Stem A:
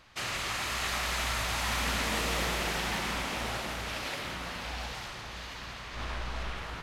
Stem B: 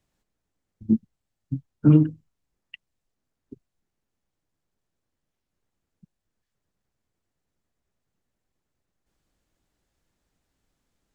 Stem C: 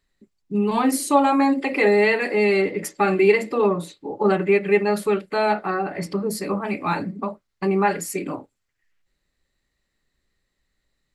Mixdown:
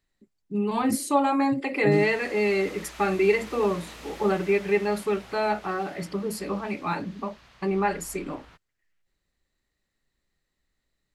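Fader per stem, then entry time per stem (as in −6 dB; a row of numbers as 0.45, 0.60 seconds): −13.0, −10.5, −5.0 decibels; 1.75, 0.00, 0.00 seconds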